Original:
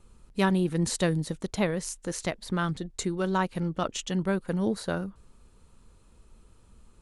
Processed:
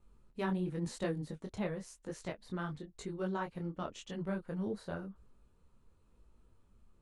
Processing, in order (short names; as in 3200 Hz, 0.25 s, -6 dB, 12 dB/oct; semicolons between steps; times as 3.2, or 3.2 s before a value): high shelf 3400 Hz -10 dB; detuned doubles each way 33 cents; gain -6 dB